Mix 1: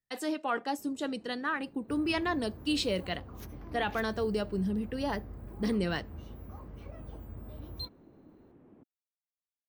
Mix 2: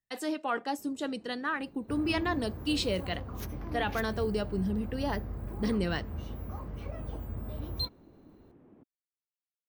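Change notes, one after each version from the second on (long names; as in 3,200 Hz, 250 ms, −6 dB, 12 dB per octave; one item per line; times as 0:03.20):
second sound +6.5 dB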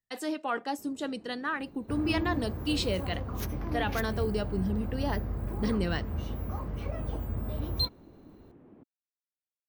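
first sound +3.0 dB
second sound +4.5 dB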